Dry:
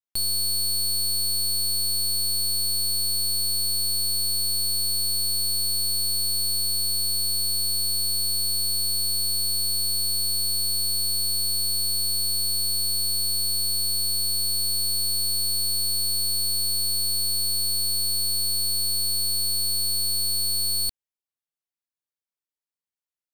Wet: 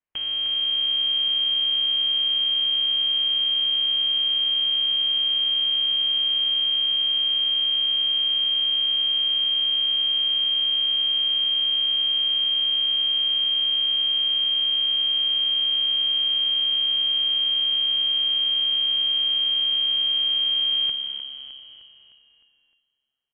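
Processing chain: octave divider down 1 oct, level +3 dB; bass shelf 240 Hz -8.5 dB; frequency-shifting echo 306 ms, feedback 53%, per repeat -69 Hz, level -9 dB; on a send at -11.5 dB: reverberation RT60 2.3 s, pre-delay 51 ms; on the sum: frequency inversion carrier 3.2 kHz; trim +6 dB

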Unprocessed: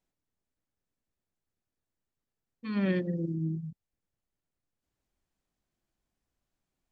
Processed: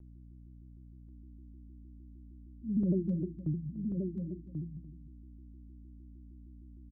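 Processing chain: local Wiener filter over 41 samples; loudest bins only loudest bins 4; rotary cabinet horn 6 Hz; 2.83–3.66 s: gate with hold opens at -27 dBFS; on a send: delay 294 ms -14.5 dB; on the sum: hum 60 Hz, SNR 12 dB; delay 1087 ms -5.5 dB; vibrato with a chosen wave saw down 6.5 Hz, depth 160 cents; trim +1.5 dB

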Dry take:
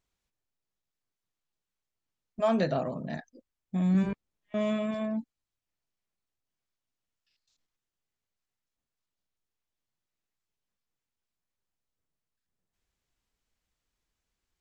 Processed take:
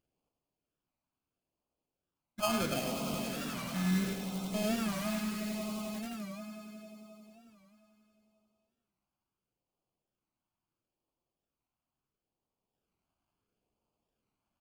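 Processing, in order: high-pass 160 Hz 6 dB/octave; sample-rate reducer 1.9 kHz, jitter 0%; on a send: echo with a slow build-up 89 ms, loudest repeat 5, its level -13 dB; on the sum: vibrato 4 Hz 8.3 cents; in parallel at -4 dB: integer overflow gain 32 dB; on the sum: LFO notch sine 0.74 Hz 430–1800 Hz; delay 104 ms -6.5 dB; warped record 45 rpm, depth 160 cents; trim -4.5 dB

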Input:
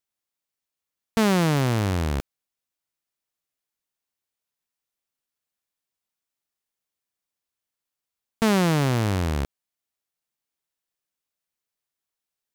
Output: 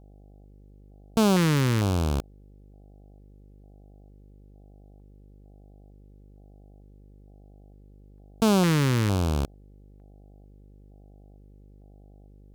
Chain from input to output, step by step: mains buzz 50 Hz, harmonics 16, -51 dBFS -6 dB/octave; LFO notch square 1.1 Hz 700–1900 Hz

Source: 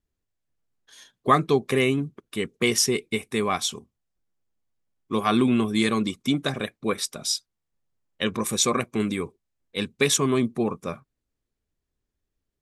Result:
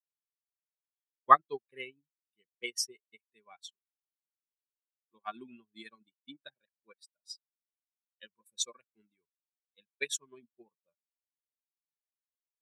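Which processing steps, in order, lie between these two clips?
expander on every frequency bin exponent 2; frequency weighting A; upward expansion 2.5:1, over -42 dBFS; trim +2.5 dB

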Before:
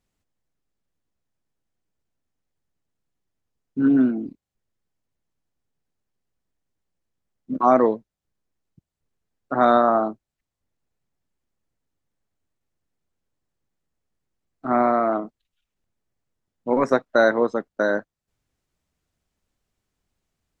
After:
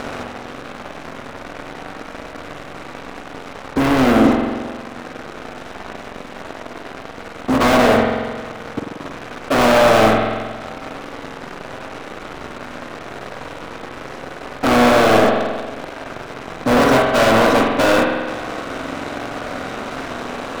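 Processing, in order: spectral levelling over time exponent 0.4; waveshaping leveller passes 5; saturation -10 dBFS, distortion -12 dB; spring tank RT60 1.6 s, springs 45 ms, chirp 25 ms, DRR 1.5 dB; trim -3.5 dB

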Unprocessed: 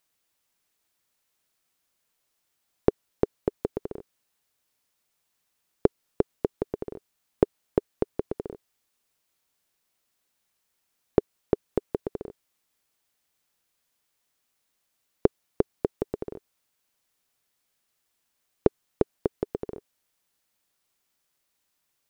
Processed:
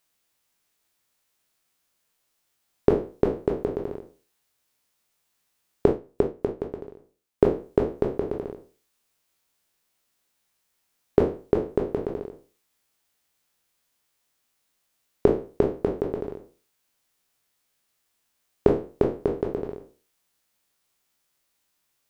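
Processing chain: spectral sustain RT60 0.38 s; 5.86–7.43 s: upward expansion 1.5:1, over -36 dBFS; trim +1 dB

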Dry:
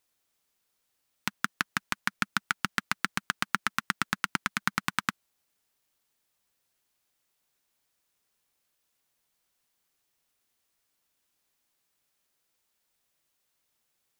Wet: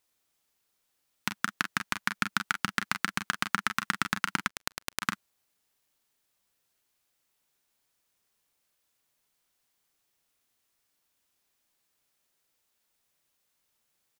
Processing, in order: on a send: early reflections 34 ms -11 dB, 44 ms -11.5 dB; 4.48–5.02 s: on the sum: power-law waveshaper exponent 3

